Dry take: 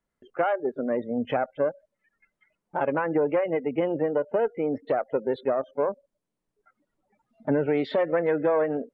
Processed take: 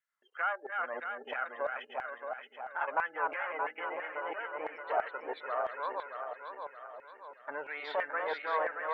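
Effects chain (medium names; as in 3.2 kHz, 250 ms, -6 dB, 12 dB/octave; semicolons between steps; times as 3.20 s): backward echo that repeats 312 ms, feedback 70%, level -3 dB; LFO high-pass saw down 3 Hz 830–1800 Hz; trim -6.5 dB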